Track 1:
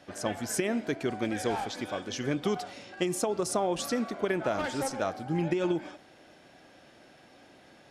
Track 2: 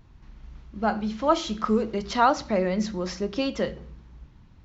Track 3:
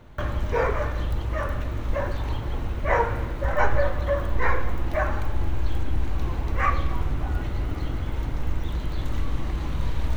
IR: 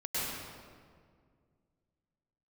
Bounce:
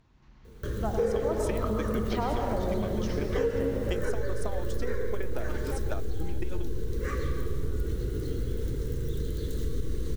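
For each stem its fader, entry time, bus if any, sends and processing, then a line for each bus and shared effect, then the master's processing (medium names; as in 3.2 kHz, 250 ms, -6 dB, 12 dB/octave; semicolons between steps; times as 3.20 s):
-8.0 dB, 0.90 s, no send, transient shaper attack +8 dB, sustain -11 dB
-8.0 dB, 0.00 s, send -4 dB, low-pass that closes with the level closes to 710 Hz, closed at -19.5 dBFS
-1.5 dB, 0.45 s, send -8.5 dB, FFT filter 170 Hz 0 dB, 300 Hz -4 dB, 450 Hz +10 dB, 710 Hz -29 dB, 1.6 kHz -9 dB, 2.4 kHz -16 dB, 3.7 kHz -4 dB, 9.2 kHz +6 dB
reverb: on, RT60 2.0 s, pre-delay 95 ms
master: bass shelf 160 Hz -7 dB; compression 4:1, threshold -24 dBFS, peak gain reduction 8 dB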